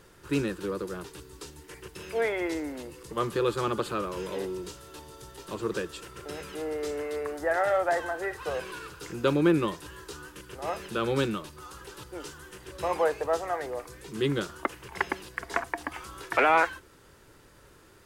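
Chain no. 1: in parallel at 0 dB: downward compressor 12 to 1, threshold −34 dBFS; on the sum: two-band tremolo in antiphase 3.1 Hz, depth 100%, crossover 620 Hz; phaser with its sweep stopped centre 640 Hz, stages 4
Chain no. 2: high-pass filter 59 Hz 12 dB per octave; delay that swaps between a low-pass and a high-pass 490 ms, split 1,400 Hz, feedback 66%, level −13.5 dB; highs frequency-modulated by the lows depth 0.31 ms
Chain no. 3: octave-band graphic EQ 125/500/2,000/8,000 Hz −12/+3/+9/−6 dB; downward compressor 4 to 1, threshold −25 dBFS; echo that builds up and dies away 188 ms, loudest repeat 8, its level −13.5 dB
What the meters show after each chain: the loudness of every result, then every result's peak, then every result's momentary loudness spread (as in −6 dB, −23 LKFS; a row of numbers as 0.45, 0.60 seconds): −37.5, −30.5, −30.5 LKFS; −15.5, −10.0, −9.5 dBFS; 14, 18, 6 LU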